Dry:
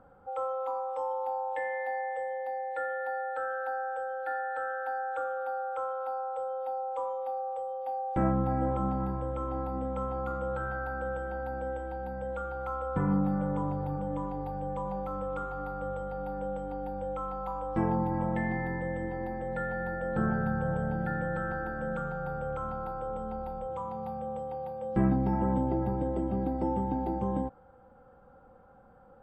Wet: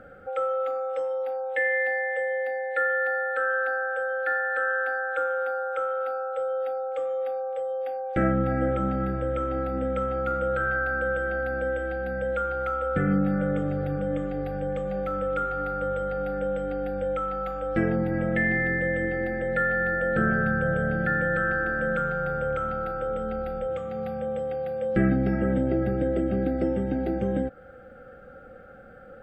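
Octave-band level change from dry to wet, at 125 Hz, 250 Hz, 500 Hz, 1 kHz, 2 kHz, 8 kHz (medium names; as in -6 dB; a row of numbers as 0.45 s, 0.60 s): +3.5 dB, +4.5 dB, +7.5 dB, +1.5 dB, +13.5 dB, no reading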